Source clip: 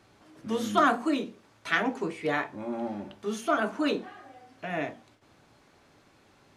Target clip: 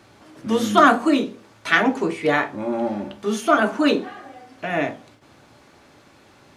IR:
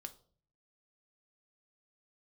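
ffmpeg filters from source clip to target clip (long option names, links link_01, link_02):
-filter_complex "[0:a]asplit=2[link_01][link_02];[link_02]highpass=49[link_03];[1:a]atrim=start_sample=2205[link_04];[link_03][link_04]afir=irnorm=-1:irlink=0,volume=6dB[link_05];[link_01][link_05]amix=inputs=2:normalize=0,volume=2.5dB"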